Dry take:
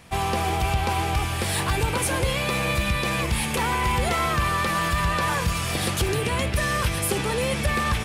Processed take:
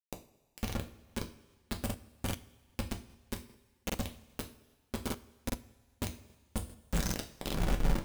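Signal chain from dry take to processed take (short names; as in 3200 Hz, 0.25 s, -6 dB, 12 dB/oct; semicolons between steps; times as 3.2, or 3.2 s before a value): tape stop at the end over 1.60 s; limiter -22.5 dBFS, peak gain reduction 9.5 dB; passive tone stack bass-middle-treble 10-0-1; formant-preserving pitch shift +5.5 st; bit-crush 6-bit; two-slope reverb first 0.33 s, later 1.6 s, from -18 dB, DRR 2.5 dB; crackling interface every 0.40 s, samples 2048, repeat, from 0.65; gain +5 dB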